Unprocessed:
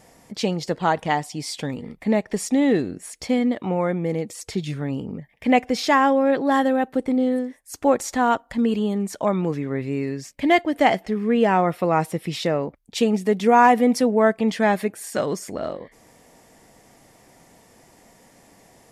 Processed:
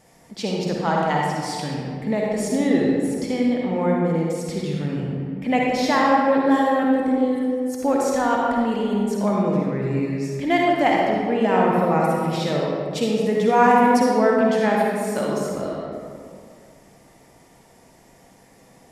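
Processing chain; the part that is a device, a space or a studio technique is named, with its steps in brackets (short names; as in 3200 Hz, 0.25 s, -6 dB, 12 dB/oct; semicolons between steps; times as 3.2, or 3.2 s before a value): stairwell (reverb RT60 2.1 s, pre-delay 46 ms, DRR -2.5 dB); gain -4 dB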